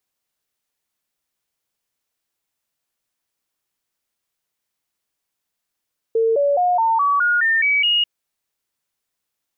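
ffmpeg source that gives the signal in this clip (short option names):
-f lavfi -i "aevalsrc='0.2*clip(min(mod(t,0.21),0.21-mod(t,0.21))/0.005,0,1)*sin(2*PI*452*pow(2,floor(t/0.21)/3)*mod(t,0.21))':d=1.89:s=44100"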